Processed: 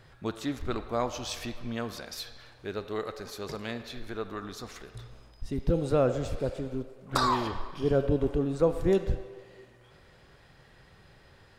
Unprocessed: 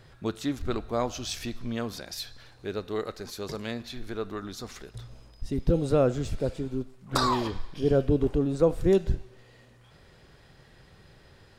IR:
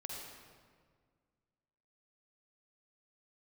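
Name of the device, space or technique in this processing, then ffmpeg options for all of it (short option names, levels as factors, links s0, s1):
filtered reverb send: -filter_complex "[0:a]asplit=2[s0][s1];[s1]highpass=550,lowpass=3300[s2];[1:a]atrim=start_sample=2205[s3];[s2][s3]afir=irnorm=-1:irlink=0,volume=0.668[s4];[s0][s4]amix=inputs=2:normalize=0,volume=0.75"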